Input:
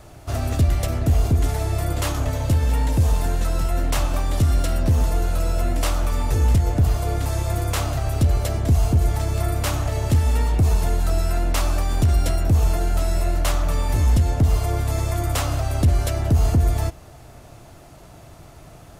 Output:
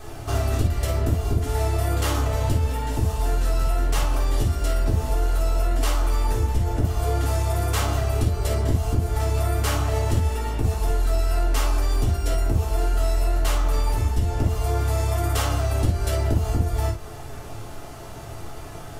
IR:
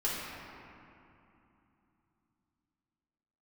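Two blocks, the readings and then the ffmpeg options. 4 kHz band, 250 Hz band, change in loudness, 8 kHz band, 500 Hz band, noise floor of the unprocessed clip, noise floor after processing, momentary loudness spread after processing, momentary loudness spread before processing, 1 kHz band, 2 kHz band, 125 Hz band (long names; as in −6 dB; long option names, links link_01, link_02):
−1.0 dB, −3.0 dB, −2.5 dB, −1.5 dB, +0.5 dB, −44 dBFS, −36 dBFS, 5 LU, 5 LU, 0.0 dB, −1.0 dB, −3.0 dB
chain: -filter_complex "[0:a]acompressor=threshold=-26dB:ratio=6[link_01];[1:a]atrim=start_sample=2205,atrim=end_sample=3528[link_02];[link_01][link_02]afir=irnorm=-1:irlink=0,volume=3.5dB"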